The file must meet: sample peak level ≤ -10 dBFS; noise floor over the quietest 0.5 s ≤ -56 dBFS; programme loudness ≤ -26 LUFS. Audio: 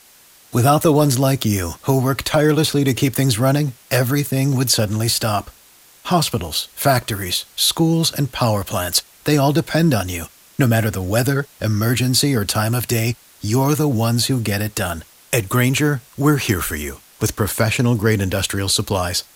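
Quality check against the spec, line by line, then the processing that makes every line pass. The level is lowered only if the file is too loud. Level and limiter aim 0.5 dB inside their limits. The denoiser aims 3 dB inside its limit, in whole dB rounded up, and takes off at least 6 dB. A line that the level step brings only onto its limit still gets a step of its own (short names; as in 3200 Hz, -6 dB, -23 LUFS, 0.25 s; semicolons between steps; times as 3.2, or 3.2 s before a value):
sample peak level -3.0 dBFS: fail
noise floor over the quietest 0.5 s -49 dBFS: fail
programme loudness -18.5 LUFS: fail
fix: gain -8 dB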